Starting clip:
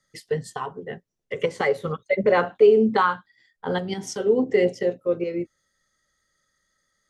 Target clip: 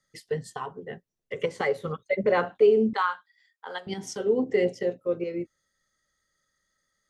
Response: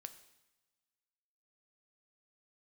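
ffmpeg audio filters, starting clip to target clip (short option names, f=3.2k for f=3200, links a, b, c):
-filter_complex "[0:a]asettb=1/sr,asplit=3[a][b][c];[a]atrim=end=2.934[d];[b]atrim=start=2.93:end=3.87,asetpts=PTS-STARTPTS,afade=t=in:d=0.004:c=qsin,afade=t=out:st=0.936:d=0.004:c=qsin,highpass=850[e];[c]atrim=start=3.866[f];[d][e]acrossfade=d=0.004:c1=hsin:c2=qsin[g];[g][f]acrossfade=d=0.004:c1=qsin:c2=hsin,volume=-4dB"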